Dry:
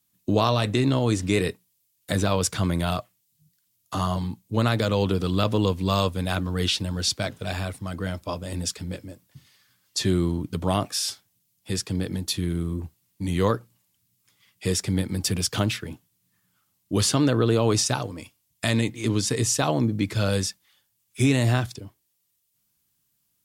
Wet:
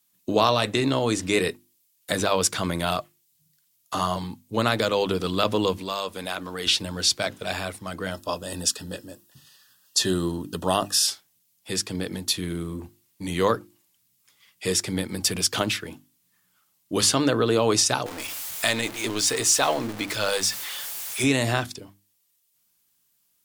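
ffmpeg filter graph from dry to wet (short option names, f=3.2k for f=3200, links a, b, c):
-filter_complex "[0:a]asettb=1/sr,asplit=3[a][b][c];[a]atrim=end=5.774[d];[b]atrim=start=5.77:end=6.67,asetpts=PTS-STARTPTS,afade=t=in:d=0.004:c=qsin,afade=t=out:st=0.896:d=0.004:c=qsin,equalizer=f=98:w=0.64:g=-10.5,acompressor=threshold=-28dB:ratio=3:attack=3.2:release=140:knee=1:detection=peak[e];[c]atrim=start=6.666[f];[d][e]acrossfade=d=0.004:c1=hsin:c2=qsin[g];[g][f]acrossfade=d=0.004:c1=qsin:c2=hsin,asettb=1/sr,asplit=3[h][i][j];[h]atrim=end=8.114[k];[i]atrim=start=8.11:end=11.07,asetpts=PTS-STARTPTS,afade=t=in:d=0.004:c=qsin,afade=t=out:st=2.956:d=0.004:c=qsin,asuperstop=centerf=2200:order=20:qfactor=4.6,highshelf=f=5.6k:g=4.5[l];[j]atrim=start=11.066[m];[k][l]acrossfade=d=0.004:c1=hsin:c2=qsin[n];[n][m]acrossfade=d=0.004:c1=qsin:c2=hsin,asettb=1/sr,asplit=3[o][p][q];[o]atrim=end=18.064[r];[p]atrim=start=18.06:end=21.24,asetpts=PTS-STARTPTS,afade=t=in:d=0.004:c=qsin,afade=t=out:st=3.176:d=0.004:c=qsin,aeval=exprs='val(0)+0.5*0.0282*sgn(val(0))':c=same,equalizer=f=160:w=0.63:g=-9[s];[q]atrim=start=21.236[t];[r][s]acrossfade=d=0.004:c1=hsin:c2=qsin[u];[u][t]acrossfade=d=0.004:c1=qsin:c2=hsin,equalizer=f=83:w=0.46:g=-11.5,bandreject=f=50:t=h:w=6,bandreject=f=100:t=h:w=6,bandreject=f=150:t=h:w=6,bandreject=f=200:t=h:w=6,bandreject=f=250:t=h:w=6,bandreject=f=300:t=h:w=6,bandreject=f=350:t=h:w=6,volume=3.5dB"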